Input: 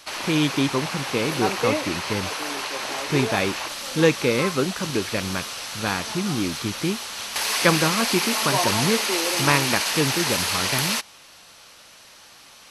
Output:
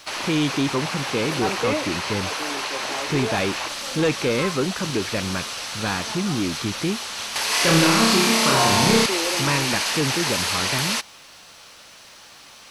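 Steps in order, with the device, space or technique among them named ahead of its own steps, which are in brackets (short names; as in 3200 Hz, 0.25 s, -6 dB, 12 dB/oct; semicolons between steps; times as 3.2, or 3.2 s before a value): compact cassette (soft clip -18 dBFS, distortion -11 dB; LPF 10000 Hz 12 dB/oct; wow and flutter 9.6 cents; white noise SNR 39 dB); 7.48–9.06 flutter echo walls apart 5.3 m, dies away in 0.87 s; gain +2.5 dB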